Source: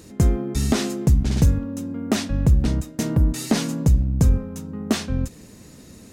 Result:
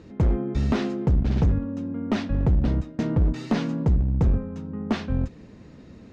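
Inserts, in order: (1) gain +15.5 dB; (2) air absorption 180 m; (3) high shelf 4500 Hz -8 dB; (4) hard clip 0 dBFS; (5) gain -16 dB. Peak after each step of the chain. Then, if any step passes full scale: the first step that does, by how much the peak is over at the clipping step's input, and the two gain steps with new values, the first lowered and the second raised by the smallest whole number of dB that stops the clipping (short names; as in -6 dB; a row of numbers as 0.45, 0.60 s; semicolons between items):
+7.5, +7.5, +7.5, 0.0, -16.0 dBFS; step 1, 7.5 dB; step 1 +7.5 dB, step 5 -8 dB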